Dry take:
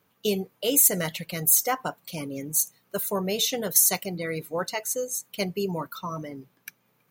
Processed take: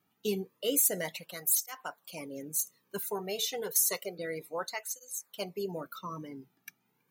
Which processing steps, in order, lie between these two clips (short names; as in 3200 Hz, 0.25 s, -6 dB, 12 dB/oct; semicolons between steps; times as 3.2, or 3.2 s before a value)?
3.1–4.19 resonant low shelf 360 Hz -6.5 dB, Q 3; tape flanging out of phase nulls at 0.3 Hz, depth 2 ms; gain -4.5 dB